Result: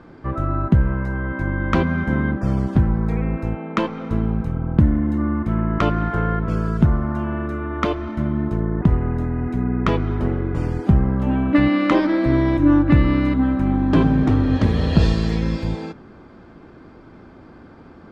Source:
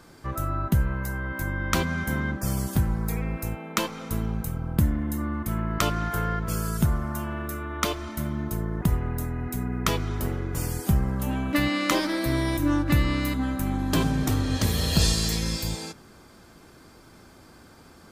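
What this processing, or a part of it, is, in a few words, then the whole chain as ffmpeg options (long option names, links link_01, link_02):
phone in a pocket: -af "lowpass=3000,equalizer=frequency=280:width_type=o:width=1.3:gain=4,highshelf=frequency=2500:gain=-9,volume=6dB"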